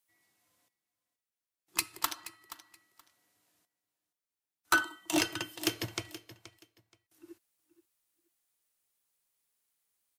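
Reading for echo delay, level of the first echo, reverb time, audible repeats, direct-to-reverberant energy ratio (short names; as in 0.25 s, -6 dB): 0.476 s, -15.5 dB, none, 2, none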